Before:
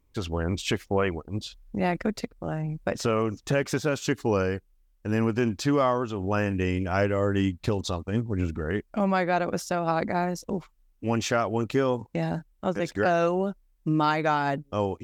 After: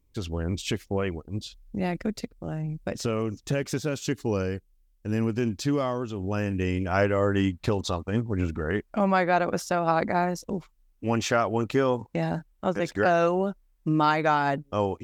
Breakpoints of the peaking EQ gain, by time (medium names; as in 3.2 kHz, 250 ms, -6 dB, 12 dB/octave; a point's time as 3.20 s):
peaking EQ 1.1 kHz 2.3 oct
6.40 s -7 dB
7.03 s +3 dB
10.33 s +3 dB
10.58 s -5 dB
11.17 s +2 dB